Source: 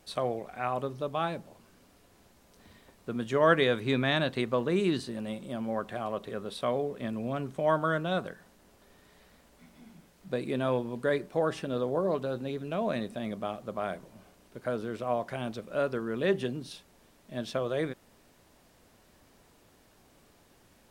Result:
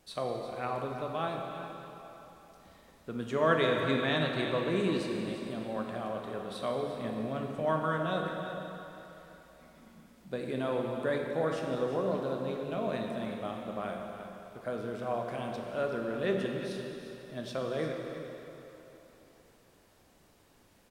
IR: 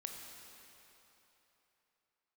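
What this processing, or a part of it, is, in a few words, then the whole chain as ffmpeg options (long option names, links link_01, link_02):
cave: -filter_complex "[0:a]aecho=1:1:349:0.266[link_01];[1:a]atrim=start_sample=2205[link_02];[link_01][link_02]afir=irnorm=-1:irlink=0"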